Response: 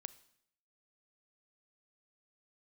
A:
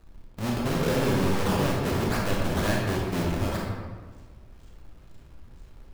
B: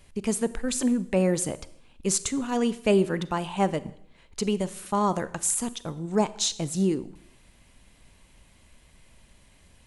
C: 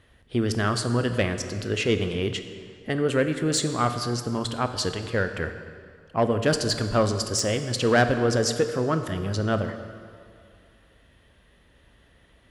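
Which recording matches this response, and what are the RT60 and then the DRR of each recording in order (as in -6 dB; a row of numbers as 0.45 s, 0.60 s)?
B; 1.5 s, 0.70 s, 2.3 s; -2.5 dB, 15.5 dB, 8.0 dB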